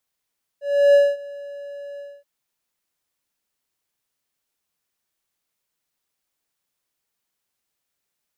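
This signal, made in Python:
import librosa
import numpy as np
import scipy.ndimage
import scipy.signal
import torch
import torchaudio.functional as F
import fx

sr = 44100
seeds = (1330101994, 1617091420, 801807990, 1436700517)

y = fx.adsr_tone(sr, wave='triangle', hz=569.0, attack_ms=331.0, decay_ms=223.0, sustain_db=-23.0, held_s=1.38, release_ms=246.0, level_db=-7.0)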